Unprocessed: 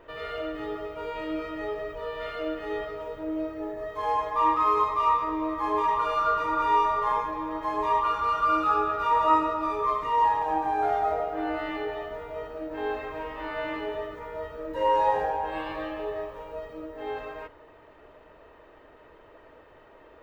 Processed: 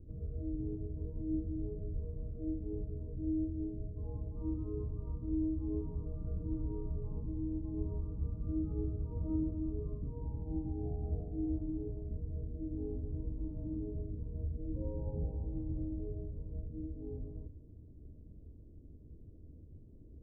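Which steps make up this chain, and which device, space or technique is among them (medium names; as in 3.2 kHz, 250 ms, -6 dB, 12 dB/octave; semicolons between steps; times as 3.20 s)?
the neighbour's flat through the wall (low-pass 230 Hz 24 dB/octave; peaking EQ 80 Hz +7 dB 0.83 oct); trim +8 dB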